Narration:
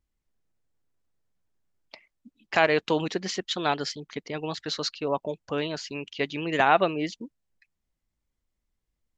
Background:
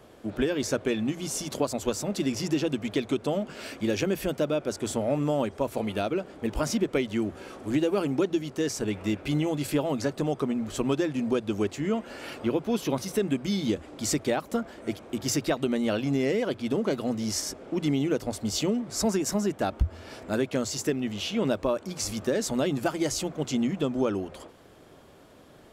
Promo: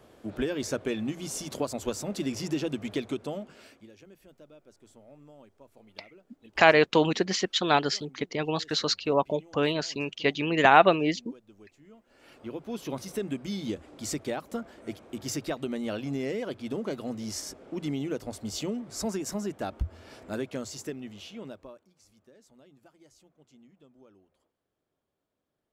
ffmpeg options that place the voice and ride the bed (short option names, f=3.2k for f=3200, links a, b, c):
-filter_complex "[0:a]adelay=4050,volume=3dB[a];[1:a]volume=17dB,afade=t=out:st=2.96:d=0.93:silence=0.0707946,afade=t=in:st=12.05:d=0.97:silence=0.0944061,afade=t=out:st=20.33:d=1.58:silence=0.0562341[b];[a][b]amix=inputs=2:normalize=0"